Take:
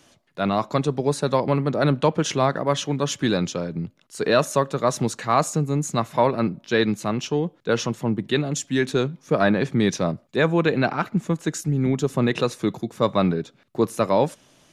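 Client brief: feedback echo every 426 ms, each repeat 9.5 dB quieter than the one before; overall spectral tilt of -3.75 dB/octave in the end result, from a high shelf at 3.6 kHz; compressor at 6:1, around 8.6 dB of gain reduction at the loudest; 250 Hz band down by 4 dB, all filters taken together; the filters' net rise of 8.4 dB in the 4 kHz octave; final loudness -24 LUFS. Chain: peaking EQ 250 Hz -5.5 dB; treble shelf 3.6 kHz +6 dB; peaking EQ 4 kHz +6 dB; compression 6:1, threshold -23 dBFS; feedback delay 426 ms, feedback 33%, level -9.5 dB; trim +4 dB

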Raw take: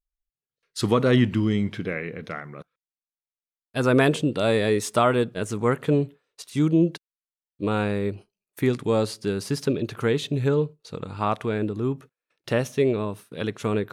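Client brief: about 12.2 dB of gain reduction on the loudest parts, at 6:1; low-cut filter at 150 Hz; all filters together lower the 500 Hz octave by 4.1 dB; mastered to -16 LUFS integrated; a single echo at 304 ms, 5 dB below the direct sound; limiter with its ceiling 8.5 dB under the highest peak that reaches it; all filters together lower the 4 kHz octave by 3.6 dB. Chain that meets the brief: high-pass 150 Hz; peaking EQ 500 Hz -5 dB; peaking EQ 4 kHz -4.5 dB; compression 6:1, threshold -30 dBFS; peak limiter -24 dBFS; delay 304 ms -5 dB; trim +20.5 dB

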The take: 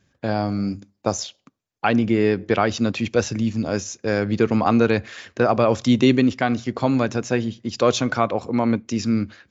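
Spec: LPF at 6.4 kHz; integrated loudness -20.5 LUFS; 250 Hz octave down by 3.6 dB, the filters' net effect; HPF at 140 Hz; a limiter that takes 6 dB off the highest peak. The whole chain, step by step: high-pass 140 Hz; low-pass 6.4 kHz; peaking EQ 250 Hz -3.5 dB; trim +5 dB; peak limiter -7 dBFS

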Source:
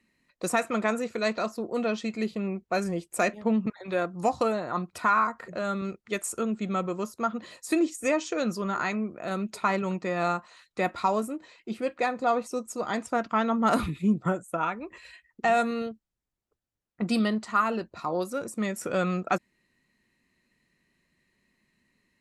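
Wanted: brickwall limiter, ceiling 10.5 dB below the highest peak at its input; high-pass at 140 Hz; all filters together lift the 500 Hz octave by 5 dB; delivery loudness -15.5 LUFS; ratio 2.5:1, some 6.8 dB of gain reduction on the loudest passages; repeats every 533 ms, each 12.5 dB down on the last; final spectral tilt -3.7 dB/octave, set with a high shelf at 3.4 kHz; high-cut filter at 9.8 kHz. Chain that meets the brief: high-pass 140 Hz; low-pass 9.8 kHz; peaking EQ 500 Hz +6.5 dB; treble shelf 3.4 kHz -8.5 dB; compression 2.5:1, threshold -27 dBFS; peak limiter -24 dBFS; feedback delay 533 ms, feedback 24%, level -12.5 dB; trim +18.5 dB

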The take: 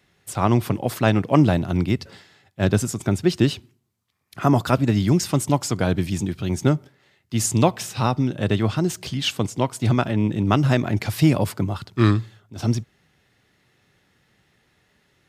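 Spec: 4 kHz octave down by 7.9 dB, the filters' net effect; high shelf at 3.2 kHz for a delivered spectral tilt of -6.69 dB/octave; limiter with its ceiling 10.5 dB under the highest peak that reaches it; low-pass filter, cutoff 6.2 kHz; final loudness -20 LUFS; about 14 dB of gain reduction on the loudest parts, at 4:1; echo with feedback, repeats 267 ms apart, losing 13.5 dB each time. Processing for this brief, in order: low-pass 6.2 kHz; treble shelf 3.2 kHz -9 dB; peaking EQ 4 kHz -3.5 dB; compression 4:1, threshold -29 dBFS; peak limiter -25 dBFS; feedback delay 267 ms, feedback 21%, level -13.5 dB; trim +16.5 dB

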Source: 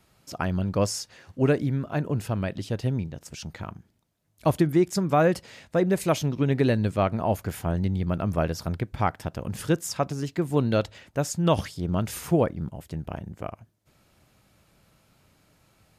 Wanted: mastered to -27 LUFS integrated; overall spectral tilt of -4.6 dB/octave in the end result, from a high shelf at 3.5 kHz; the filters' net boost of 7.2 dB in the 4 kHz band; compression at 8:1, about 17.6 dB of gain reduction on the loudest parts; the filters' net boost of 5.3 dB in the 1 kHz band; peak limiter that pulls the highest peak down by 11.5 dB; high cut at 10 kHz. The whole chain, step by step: low-pass 10 kHz; peaking EQ 1 kHz +6.5 dB; treble shelf 3.5 kHz +6.5 dB; peaking EQ 4 kHz +4.5 dB; compression 8:1, threshold -33 dBFS; trim +14 dB; peak limiter -16 dBFS

